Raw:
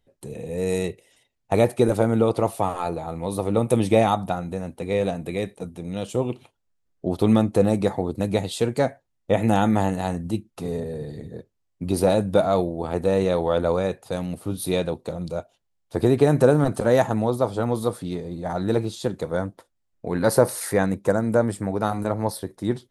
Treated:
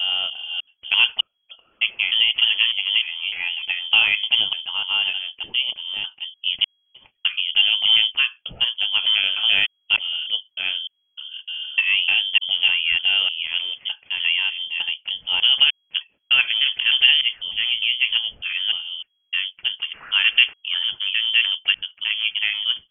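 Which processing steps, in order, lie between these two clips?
slices played last to first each 302 ms, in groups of 3; frequency inversion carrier 3.3 kHz; trim +1 dB

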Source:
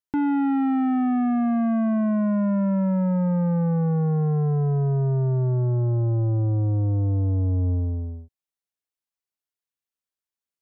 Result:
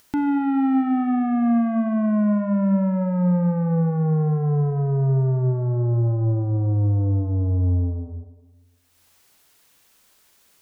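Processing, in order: upward compressor, threshold -35 dBFS; Schroeder reverb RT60 1.4 s, combs from 30 ms, DRR 9.5 dB; trim +1 dB

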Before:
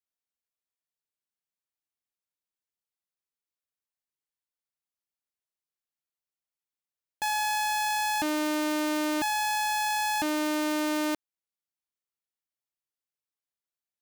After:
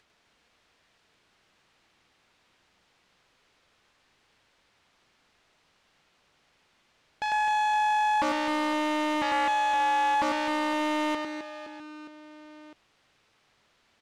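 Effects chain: low-pass 3.5 kHz 12 dB/octave; upward compressor, threshold -45 dBFS; on a send: reverse bouncing-ball echo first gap 100 ms, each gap 1.6×, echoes 5; on the sum: loudspeaker Doppler distortion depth 0.33 ms

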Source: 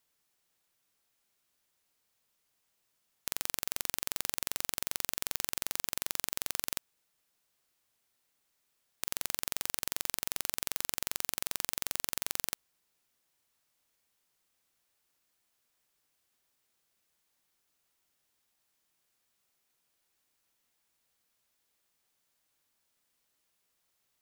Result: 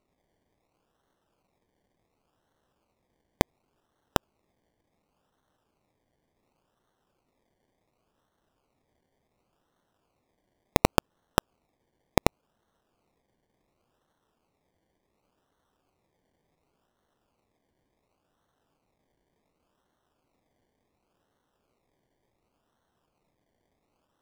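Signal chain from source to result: decimation with a swept rate 26×, swing 60% 0.69 Hz; trim +2 dB

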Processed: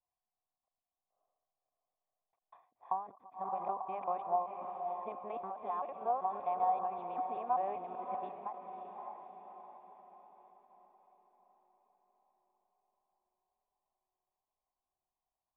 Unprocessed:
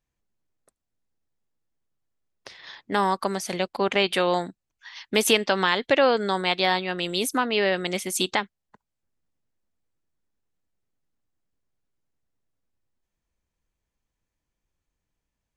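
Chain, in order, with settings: time reversed locally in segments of 194 ms; in parallel at +0.5 dB: compression, threshold -29 dBFS, peak gain reduction 14 dB; on the sum: peak limiter -10.5 dBFS, peak gain reduction 8 dB; cascade formant filter a; on a send: echo that smears into a reverb 580 ms, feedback 51%, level -7 dB; on the sum: endings held to a fixed fall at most 130 dB/s

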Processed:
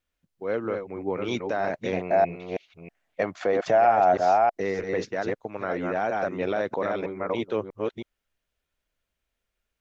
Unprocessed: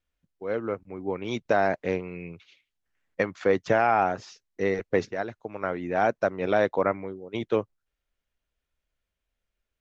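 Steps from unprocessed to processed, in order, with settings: chunks repeated in reverse 321 ms, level -5.5 dB; bass shelf 100 Hz -5.5 dB; peak limiter -19.5 dBFS, peak gain reduction 11.5 dB; 1.93–4.61 s: peaking EQ 680 Hz +12.5 dB 0.47 oct; trim +2.5 dB

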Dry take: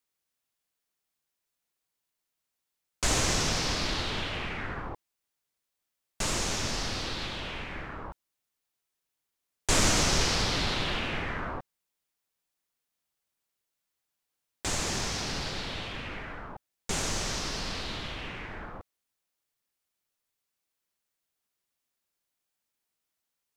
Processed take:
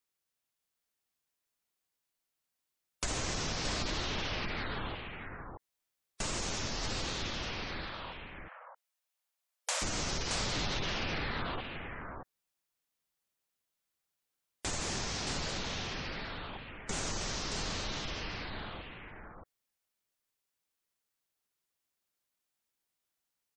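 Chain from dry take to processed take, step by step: 3.11–4.05 s: treble shelf 6.4 kHz -2.5 dB; 7.86–9.82 s: brick-wall FIR high-pass 480 Hz; compression 6:1, threshold -28 dBFS, peak gain reduction 8.5 dB; delay 624 ms -5.5 dB; spectral gate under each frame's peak -25 dB strong; trim -3 dB

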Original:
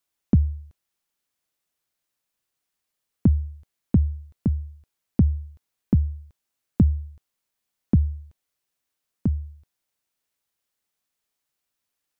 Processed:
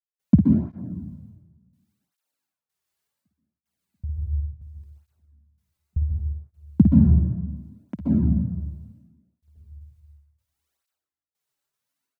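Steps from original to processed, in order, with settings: dynamic bell 200 Hz, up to +6 dB, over -31 dBFS, Q 0.91; trance gate ".x..xx...x" 78 bpm -60 dB; early reflections 54 ms -6.5 dB, 64 ms -14.5 dB; plate-style reverb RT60 1.4 s, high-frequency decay 0.55×, pre-delay 115 ms, DRR -2.5 dB; cancelling through-zero flanger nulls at 0.69 Hz, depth 4.4 ms

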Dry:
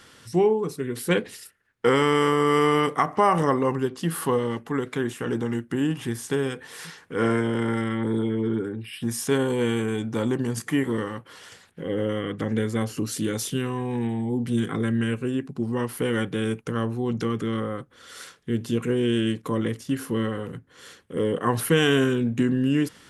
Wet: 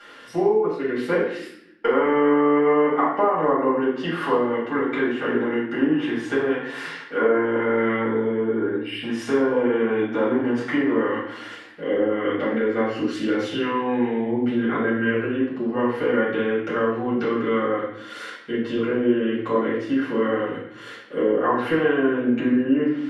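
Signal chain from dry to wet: three-band isolator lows -20 dB, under 230 Hz, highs -15 dB, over 3.2 kHz; compression 4:1, threshold -24 dBFS, peak gain reduction 9 dB; low-pass that closes with the level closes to 1.3 kHz, closed at -24 dBFS; peaking EQ 190 Hz -12 dB 0.56 oct; reverberation RT60 0.70 s, pre-delay 4 ms, DRR -8.5 dB

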